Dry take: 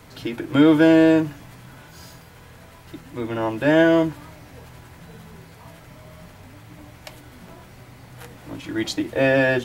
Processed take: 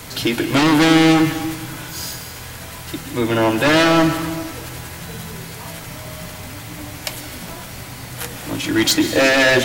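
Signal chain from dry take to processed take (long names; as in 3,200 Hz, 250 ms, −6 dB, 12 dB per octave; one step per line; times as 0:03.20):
high-shelf EQ 2,800 Hz +11 dB
in parallel at −6.5 dB: sine wavefolder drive 13 dB, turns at −4 dBFS
on the sum: dense smooth reverb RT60 1.5 s, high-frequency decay 0.9×, pre-delay 115 ms, DRR 8.5 dB
level −3.5 dB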